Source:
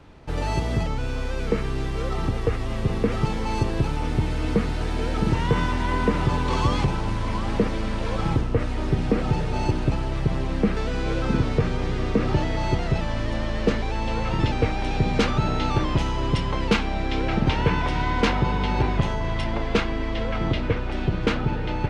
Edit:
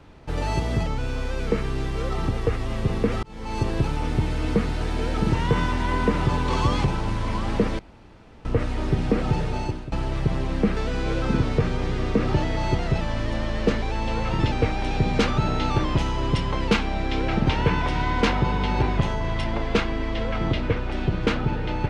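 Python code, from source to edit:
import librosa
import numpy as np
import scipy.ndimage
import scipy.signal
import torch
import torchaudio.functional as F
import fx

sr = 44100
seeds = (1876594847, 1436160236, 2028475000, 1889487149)

y = fx.edit(x, sr, fx.fade_in_span(start_s=3.23, length_s=0.45),
    fx.room_tone_fill(start_s=7.79, length_s=0.66),
    fx.fade_out_to(start_s=9.46, length_s=0.46, floor_db=-17.0), tone=tone)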